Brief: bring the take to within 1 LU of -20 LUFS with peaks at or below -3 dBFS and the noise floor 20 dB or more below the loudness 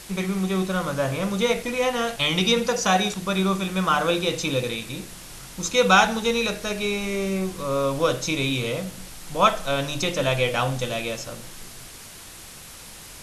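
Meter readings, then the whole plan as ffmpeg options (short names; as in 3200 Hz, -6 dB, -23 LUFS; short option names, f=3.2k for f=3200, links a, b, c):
noise floor -42 dBFS; noise floor target -44 dBFS; loudness -23.5 LUFS; peak -4.0 dBFS; loudness target -20.0 LUFS
-> -af "afftdn=nr=6:nf=-42"
-af "volume=3.5dB,alimiter=limit=-3dB:level=0:latency=1"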